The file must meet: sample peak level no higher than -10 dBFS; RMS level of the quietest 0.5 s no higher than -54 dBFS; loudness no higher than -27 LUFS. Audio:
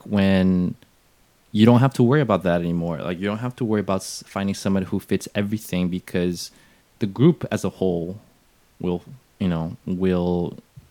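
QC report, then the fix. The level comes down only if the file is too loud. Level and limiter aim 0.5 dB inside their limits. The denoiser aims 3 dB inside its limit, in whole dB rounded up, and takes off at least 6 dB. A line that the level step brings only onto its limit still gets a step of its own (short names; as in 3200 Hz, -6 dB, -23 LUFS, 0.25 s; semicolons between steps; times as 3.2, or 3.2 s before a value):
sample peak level -2.5 dBFS: fail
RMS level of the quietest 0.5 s -58 dBFS: OK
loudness -22.5 LUFS: fail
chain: gain -5 dB; limiter -10.5 dBFS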